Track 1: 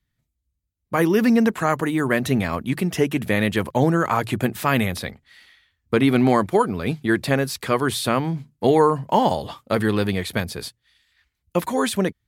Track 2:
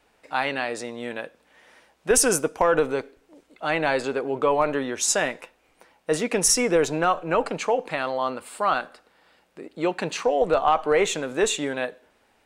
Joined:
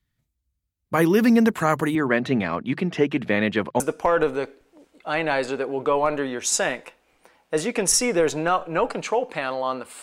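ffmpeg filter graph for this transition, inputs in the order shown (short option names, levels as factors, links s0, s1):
-filter_complex "[0:a]asettb=1/sr,asplit=3[s0][s1][s2];[s0]atrim=end=1.954[s3];[s1]atrim=start=1.95:end=3.8,asetpts=PTS-STARTPTS,afade=t=in:d=0.004:c=qsin,afade=t=out:st=1.846:d=0.004:c=qsin,highpass=170,lowpass=3500[s4];[s2]atrim=start=3.796[s5];[s3][s4]acrossfade=d=0.004:c1=hsin:c2=qsin[s6];[s6][s5]acrossfade=d=0.004:c1=qsin:c2=hsin,apad=whole_dur=10.02,atrim=end=10.02,atrim=end=3.802[s7];[1:a]atrim=start=2.358:end=8.58[s8];[s7][s8]acrossfade=d=0.004:c1=hsin:c2=hsin"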